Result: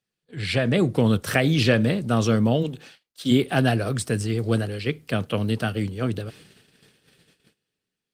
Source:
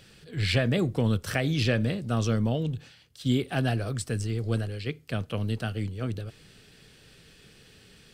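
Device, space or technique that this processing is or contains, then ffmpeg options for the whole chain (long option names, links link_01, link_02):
video call: -filter_complex "[0:a]asplit=3[link_01][link_02][link_03];[link_01]afade=type=out:start_time=2.62:duration=0.02[link_04];[link_02]highpass=240,afade=type=in:start_time=2.62:duration=0.02,afade=type=out:start_time=3.3:duration=0.02[link_05];[link_03]afade=type=in:start_time=3.3:duration=0.02[link_06];[link_04][link_05][link_06]amix=inputs=3:normalize=0,highpass=130,dynaudnorm=framelen=120:gausssize=11:maxgain=8dB,agate=range=-29dB:threshold=-45dB:ratio=16:detection=peak" -ar 48000 -c:a libopus -b:a 32k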